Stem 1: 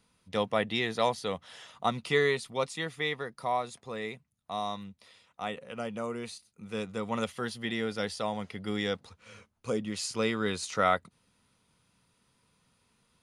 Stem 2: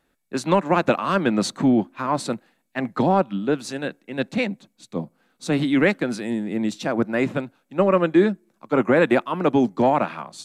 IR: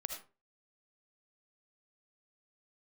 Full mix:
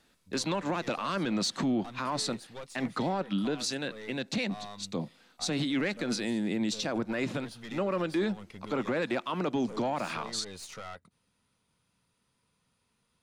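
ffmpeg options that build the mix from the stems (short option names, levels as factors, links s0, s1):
-filter_complex "[0:a]acompressor=threshold=0.0355:ratio=6,aeval=exprs='(tanh(50.1*val(0)+0.45)-tanh(0.45))/50.1':c=same,volume=0.668[s0];[1:a]equalizer=f=4800:t=o:w=1.6:g=11,asoftclip=type=tanh:threshold=0.422,volume=0.891[s1];[s0][s1]amix=inputs=2:normalize=0,alimiter=limit=0.075:level=0:latency=1:release=108"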